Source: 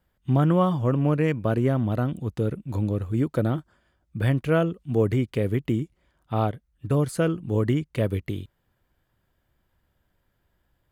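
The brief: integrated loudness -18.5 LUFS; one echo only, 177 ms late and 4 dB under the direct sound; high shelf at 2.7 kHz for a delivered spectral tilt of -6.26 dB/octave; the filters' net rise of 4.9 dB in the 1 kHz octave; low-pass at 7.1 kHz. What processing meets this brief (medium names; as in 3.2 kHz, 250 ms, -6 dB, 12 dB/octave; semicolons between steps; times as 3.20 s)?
low-pass 7.1 kHz; peaking EQ 1 kHz +6 dB; treble shelf 2.7 kHz +3.5 dB; delay 177 ms -4 dB; trim +4.5 dB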